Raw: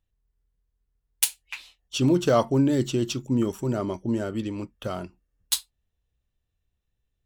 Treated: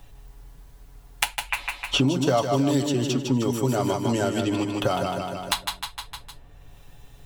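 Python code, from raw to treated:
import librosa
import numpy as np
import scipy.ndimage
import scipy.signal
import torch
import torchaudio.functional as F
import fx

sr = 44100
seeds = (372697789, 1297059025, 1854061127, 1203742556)

p1 = fx.peak_eq(x, sr, hz=810.0, db=7.5, octaves=0.9)
p2 = p1 + 0.53 * np.pad(p1, (int(7.1 * sr / 1000.0), 0))[:len(p1)]
p3 = p2 + fx.echo_feedback(p2, sr, ms=153, feedback_pct=40, wet_db=-6.0, dry=0)
p4 = fx.band_squash(p3, sr, depth_pct=100)
y = p4 * librosa.db_to_amplitude(-1.0)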